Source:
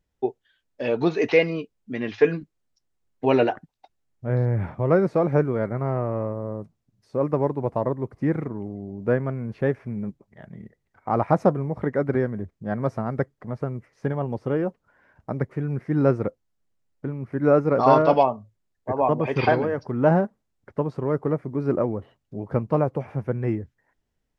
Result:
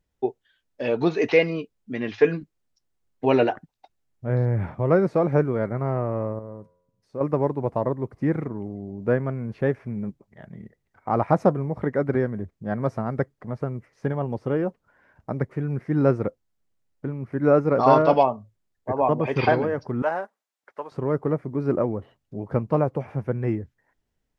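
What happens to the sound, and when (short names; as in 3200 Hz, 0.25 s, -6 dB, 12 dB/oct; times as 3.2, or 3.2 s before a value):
6.39–7.21 resonator 89 Hz, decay 0.85 s
20.02–20.92 HPF 800 Hz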